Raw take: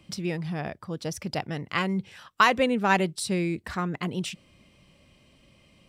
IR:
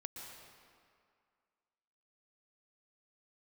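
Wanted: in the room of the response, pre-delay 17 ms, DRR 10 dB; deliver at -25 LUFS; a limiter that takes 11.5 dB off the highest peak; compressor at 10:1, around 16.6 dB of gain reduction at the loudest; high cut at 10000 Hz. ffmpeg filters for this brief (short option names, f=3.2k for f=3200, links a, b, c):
-filter_complex "[0:a]lowpass=10k,acompressor=threshold=-31dB:ratio=10,alimiter=level_in=3.5dB:limit=-24dB:level=0:latency=1,volume=-3.5dB,asplit=2[a][b];[1:a]atrim=start_sample=2205,adelay=17[c];[b][c]afir=irnorm=-1:irlink=0,volume=-7.5dB[d];[a][d]amix=inputs=2:normalize=0,volume=12dB"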